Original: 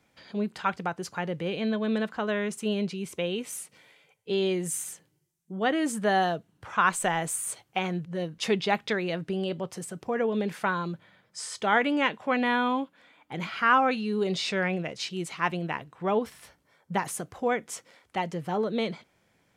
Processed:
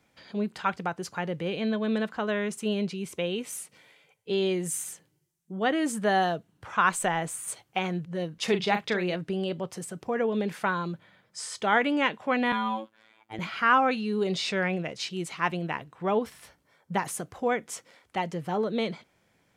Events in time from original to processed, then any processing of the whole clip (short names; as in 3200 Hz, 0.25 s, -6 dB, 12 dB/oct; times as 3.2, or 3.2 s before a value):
7.05–7.48 high shelf 5200 Hz -7 dB
8.44–9.16 doubler 39 ms -8.5 dB
12.52–13.39 robotiser 110 Hz